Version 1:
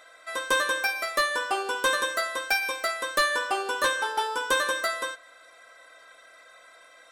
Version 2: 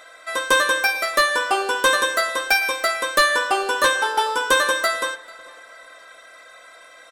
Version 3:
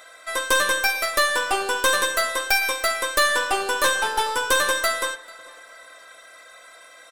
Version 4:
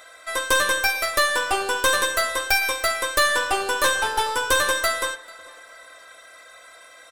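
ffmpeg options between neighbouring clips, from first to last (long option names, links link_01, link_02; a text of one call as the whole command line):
ffmpeg -i in.wav -filter_complex "[0:a]asplit=2[link_01][link_02];[link_02]adelay=442,lowpass=frequency=4600:poles=1,volume=-21.5dB,asplit=2[link_03][link_04];[link_04]adelay=442,lowpass=frequency=4600:poles=1,volume=0.4,asplit=2[link_05][link_06];[link_06]adelay=442,lowpass=frequency=4600:poles=1,volume=0.4[link_07];[link_01][link_03][link_05][link_07]amix=inputs=4:normalize=0,volume=7dB" out.wav
ffmpeg -i in.wav -af "highshelf=frequency=6100:gain=7.5,aeval=exprs='(tanh(4.47*val(0)+0.5)-tanh(0.5))/4.47':channel_layout=same" out.wav
ffmpeg -i in.wav -af "equalizer=frequency=74:width_type=o:width=0.42:gain=14.5" out.wav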